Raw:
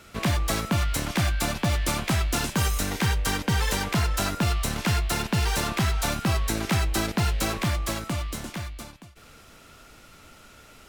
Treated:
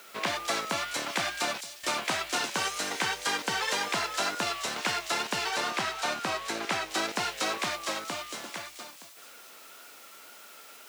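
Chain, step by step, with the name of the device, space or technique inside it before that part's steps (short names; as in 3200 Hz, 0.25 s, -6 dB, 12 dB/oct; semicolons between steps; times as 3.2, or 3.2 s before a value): worn cassette (LPF 6500 Hz 12 dB/oct; wow and flutter; level dips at 1.61, 0.222 s -21 dB; white noise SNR 28 dB); HPF 460 Hz 12 dB/oct; 5.49–6.9 high shelf 4500 Hz -5 dB; thin delay 0.216 s, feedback 53%, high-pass 5100 Hz, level -4 dB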